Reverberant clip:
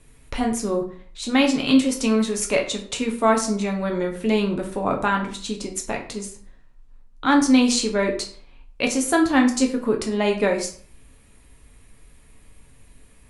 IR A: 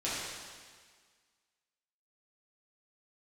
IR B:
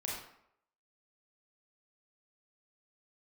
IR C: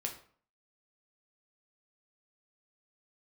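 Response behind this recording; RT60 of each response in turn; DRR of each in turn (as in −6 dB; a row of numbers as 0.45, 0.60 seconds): C; 1.7, 0.75, 0.50 seconds; −10.0, −4.5, 1.5 decibels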